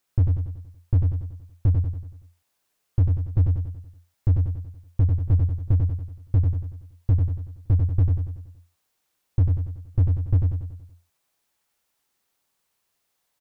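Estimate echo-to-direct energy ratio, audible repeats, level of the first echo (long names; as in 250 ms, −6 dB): −3.0 dB, 6, −4.0 dB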